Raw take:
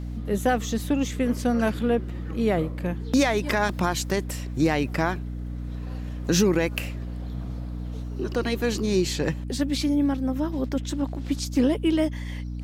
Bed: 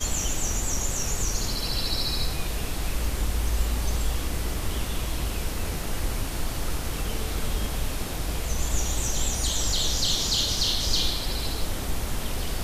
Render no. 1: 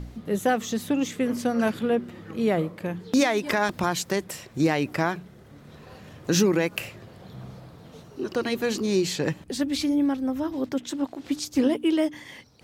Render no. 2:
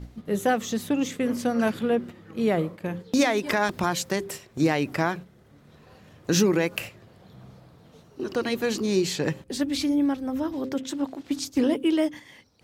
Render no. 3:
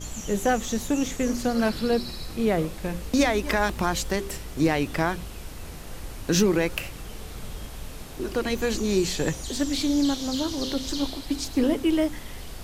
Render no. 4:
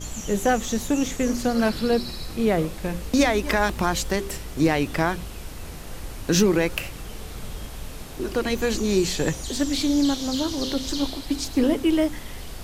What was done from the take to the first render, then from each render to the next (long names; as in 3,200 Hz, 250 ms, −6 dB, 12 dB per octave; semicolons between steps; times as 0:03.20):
hum removal 60 Hz, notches 5
hum removal 131.7 Hz, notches 4; noise gate −36 dBFS, range −6 dB
mix in bed −9.5 dB
level +2 dB